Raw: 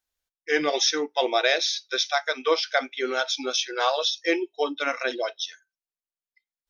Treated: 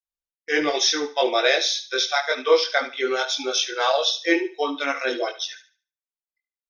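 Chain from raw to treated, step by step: gate -48 dBFS, range -18 dB; chorus voices 4, 0.6 Hz, delay 22 ms, depth 1.4 ms; on a send: thinning echo 73 ms, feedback 29%, high-pass 490 Hz, level -13 dB; on the sum: gain +5.5 dB

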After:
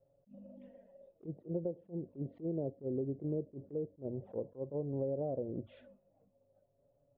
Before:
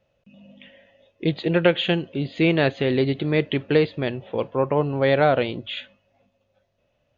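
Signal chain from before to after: treble ducked by the level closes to 650 Hz, closed at -20 dBFS; EQ curve 180 Hz 0 dB, 560 Hz +3 dB, 2700 Hz -29 dB; compressor 8:1, threshold -31 dBFS, peak gain reduction 19 dB; envelope flanger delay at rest 7.7 ms, full sweep at -32.5 dBFS; attack slew limiter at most 310 dB/s; gain -2 dB

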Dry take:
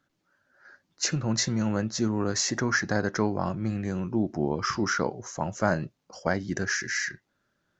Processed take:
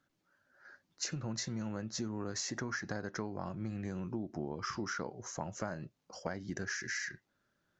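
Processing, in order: compressor, threshold -31 dBFS, peak gain reduction 13 dB; gain -4 dB

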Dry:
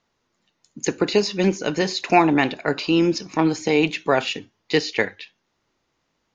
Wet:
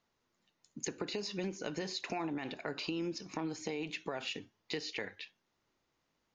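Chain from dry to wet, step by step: limiter -12.5 dBFS, peak gain reduction 8.5 dB; compressor, threshold -27 dBFS, peak gain reduction 10.5 dB; gain -8 dB

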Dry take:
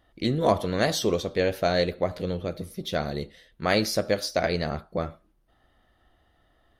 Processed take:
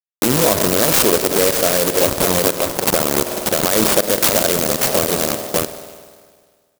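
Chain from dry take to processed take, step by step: level-crossing sampler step -23.5 dBFS; HPF 580 Hz 6 dB/oct; spring tank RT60 1.8 s, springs 50 ms, chirp 65 ms, DRR 15.5 dB; dynamic EQ 780 Hz, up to -6 dB, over -42 dBFS, Q 1.9; 2.02–4.07 rippled Chebyshev low-pass 3600 Hz, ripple 3 dB; echo 0.586 s -13.5 dB; compressor 5:1, threshold -39 dBFS, peak gain reduction 15.5 dB; maximiser +34.5 dB; clock jitter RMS 0.15 ms; gain -2 dB

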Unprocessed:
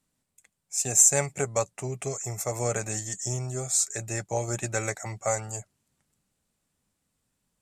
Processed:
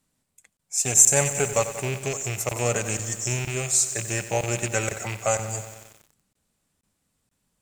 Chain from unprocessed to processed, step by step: rattling part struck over -34 dBFS, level -25 dBFS; crackling interface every 0.48 s, samples 1024, zero, from 0.57; lo-fi delay 92 ms, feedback 80%, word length 7-bit, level -12 dB; gain +3.5 dB

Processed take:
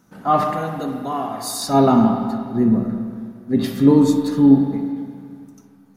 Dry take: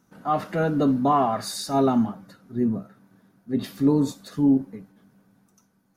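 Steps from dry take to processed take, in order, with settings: 0.53–1.62 pre-emphasis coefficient 0.8; spring tank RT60 2 s, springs 31/36/50 ms, chirp 55 ms, DRR 3 dB; gain +6.5 dB

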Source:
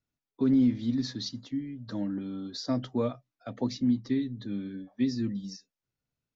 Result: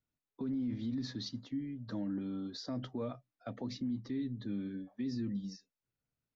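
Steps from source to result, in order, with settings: LPF 3300 Hz 6 dB/oct; limiter -27.5 dBFS, peak gain reduction 11 dB; gain -2.5 dB

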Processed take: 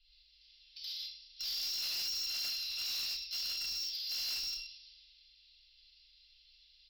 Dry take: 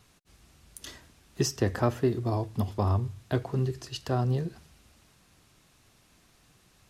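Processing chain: FFT order left unsorted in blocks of 256 samples; hum 50 Hz, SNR 20 dB; tilt +2.5 dB/oct; in parallel at -3 dB: limiter -21 dBFS, peak gain reduction 17.5 dB; on the sum: downsampling 11025 Hz; inverse Chebyshev band-stop 140–770 Hz, stop band 80 dB; non-linear reverb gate 0.22 s flat, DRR -7.5 dB; low-pass opened by the level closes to 2300 Hz, open at -40 dBFS; soft clip -35 dBFS, distortion -7 dB

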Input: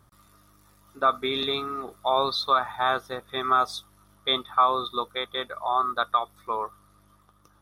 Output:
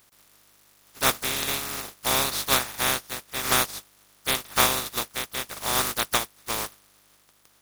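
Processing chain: spectral contrast lowered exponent 0.19

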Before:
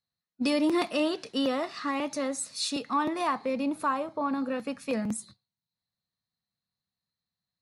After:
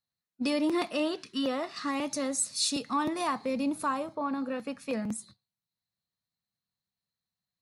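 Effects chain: 1.22–1.43 spectral gain 390–990 Hz -17 dB; 1.76–4.15 tone controls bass +6 dB, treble +8 dB; gain -2.5 dB

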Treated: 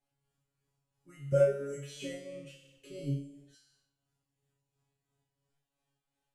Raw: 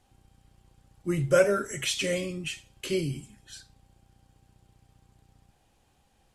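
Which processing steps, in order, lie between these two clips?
bell 69 Hz -11.5 dB 0.93 oct; resonator 140 Hz, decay 0.63 s, harmonics all, mix 100%; tape echo 91 ms, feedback 56%, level -12.5 dB, low-pass 4500 Hz; tremolo 2.9 Hz, depth 44%; 1.32–3.55 resonant low shelf 700 Hz +10 dB, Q 1.5; gain -1.5 dB

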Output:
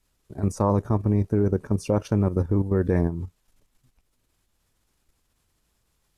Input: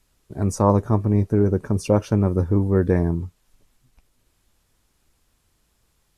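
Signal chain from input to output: level quantiser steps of 10 dB

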